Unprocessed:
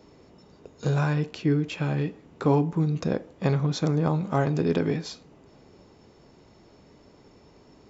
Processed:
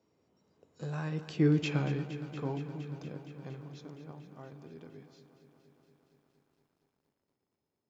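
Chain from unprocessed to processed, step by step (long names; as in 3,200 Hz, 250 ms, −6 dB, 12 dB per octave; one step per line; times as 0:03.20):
source passing by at 0:01.58, 14 m/s, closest 2.1 metres
high-pass filter 75 Hz 24 dB per octave
feedback echo at a low word length 233 ms, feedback 80%, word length 12 bits, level −13.5 dB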